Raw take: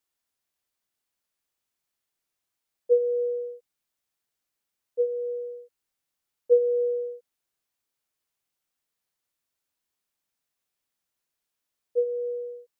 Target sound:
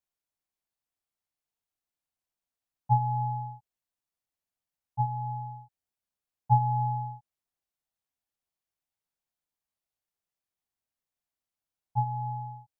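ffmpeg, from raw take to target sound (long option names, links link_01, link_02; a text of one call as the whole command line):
ffmpeg -i in.wav -af "equalizer=frequency=370:width_type=o:width=1.7:gain=8.5,aeval=exprs='val(0)*sin(2*PI*360*n/s)':channel_layout=same,volume=-7dB" out.wav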